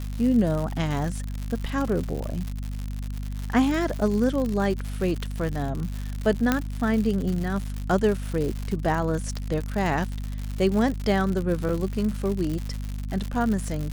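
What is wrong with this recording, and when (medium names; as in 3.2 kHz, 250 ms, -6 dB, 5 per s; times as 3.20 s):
crackle 140 per s -28 dBFS
hum 50 Hz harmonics 5 -31 dBFS
6.52 s: pop -7 dBFS
11.69 s: dropout 3.6 ms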